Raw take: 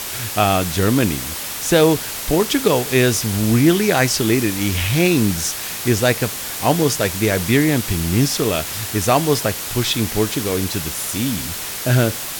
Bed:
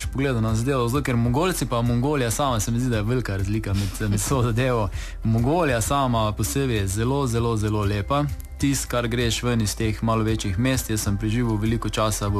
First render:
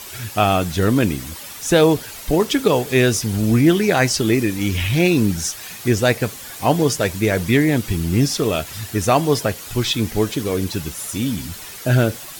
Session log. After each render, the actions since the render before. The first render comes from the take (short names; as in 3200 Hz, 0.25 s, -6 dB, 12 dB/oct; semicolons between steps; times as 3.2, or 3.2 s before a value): denoiser 10 dB, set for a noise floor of -28 dBFS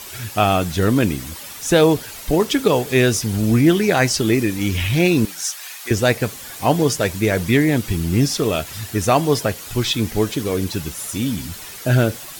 5.25–5.91 HPF 820 Hz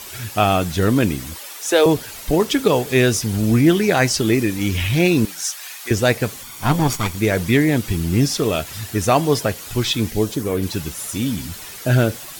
1.38–1.86 HPF 340 Hz 24 dB/oct; 6.43–7.18 minimum comb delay 0.88 ms; 10.09–10.62 bell 890 Hz -> 7100 Hz -10 dB 1 oct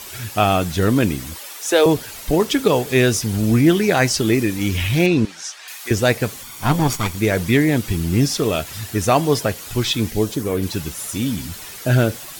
5.06–5.68 air absorption 92 m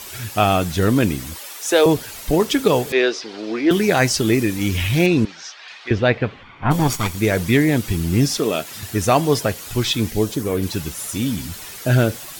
2.92–3.71 Chebyshev band-pass 340–4700 Hz, order 3; 5.24–6.7 LPF 6100 Hz -> 2400 Hz 24 dB/oct; 8.39–8.83 Chebyshev high-pass 220 Hz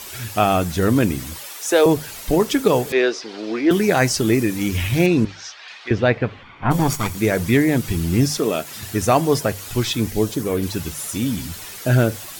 notches 50/100/150 Hz; dynamic EQ 3400 Hz, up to -4 dB, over -34 dBFS, Q 1.2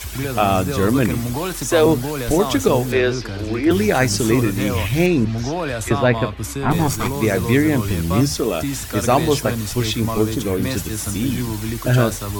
add bed -3 dB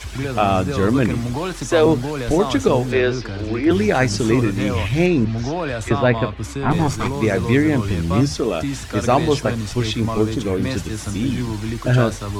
air absorption 67 m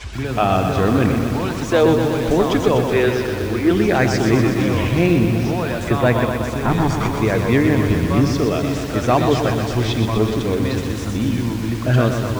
air absorption 57 m; lo-fi delay 0.124 s, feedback 80%, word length 6-bit, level -6.5 dB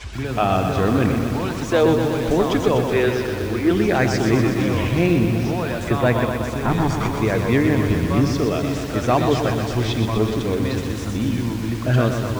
gain -2 dB